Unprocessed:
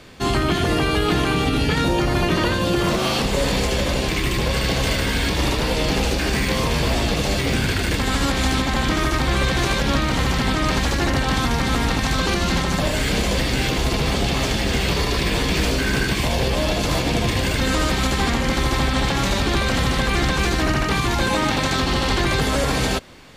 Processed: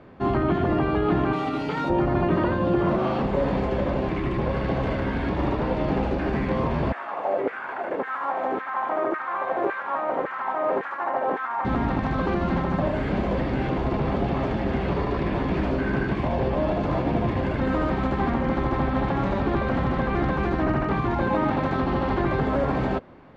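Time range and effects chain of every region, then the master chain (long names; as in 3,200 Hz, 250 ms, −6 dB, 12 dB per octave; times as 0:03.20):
0:01.33–0:01.90: RIAA equalisation recording + notch filter 1,700 Hz, Q 8.7 + comb filter 6.6 ms, depth 38%
0:06.92–0:11.65: parametric band 4,600 Hz −13 dB 1.7 octaves + auto-filter high-pass saw down 1.8 Hz 410–1,700 Hz
whole clip: low-pass filter 1,100 Hz 12 dB per octave; low-shelf EQ 74 Hz −11.5 dB; notch filter 470 Hz, Q 12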